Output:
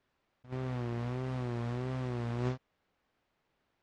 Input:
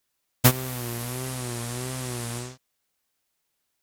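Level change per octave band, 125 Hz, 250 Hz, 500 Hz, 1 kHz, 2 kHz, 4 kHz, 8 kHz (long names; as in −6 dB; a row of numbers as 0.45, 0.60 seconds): −5.5 dB, −5.5 dB, −5.0 dB, −8.5 dB, −12.5 dB, −19.0 dB, below −30 dB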